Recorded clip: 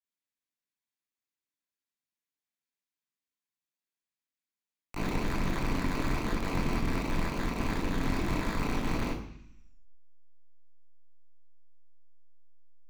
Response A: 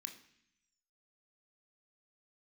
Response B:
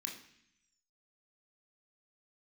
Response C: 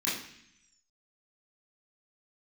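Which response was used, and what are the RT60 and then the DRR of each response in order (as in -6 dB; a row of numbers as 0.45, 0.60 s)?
C; 0.65, 0.65, 0.65 s; 3.5, -1.0, -10.5 dB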